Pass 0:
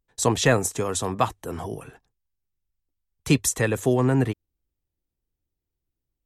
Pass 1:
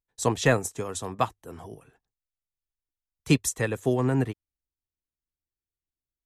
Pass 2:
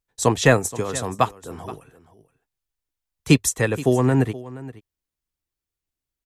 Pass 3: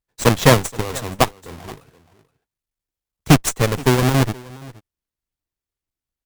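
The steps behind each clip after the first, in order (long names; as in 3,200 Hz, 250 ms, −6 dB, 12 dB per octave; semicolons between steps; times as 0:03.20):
expander for the loud parts 1.5 to 1, over −40 dBFS; level −1 dB
single-tap delay 474 ms −17.5 dB; level +6 dB
each half-wave held at its own peak; harmonic generator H 7 −25 dB, 8 −17 dB, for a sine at −1.5 dBFS; level −1 dB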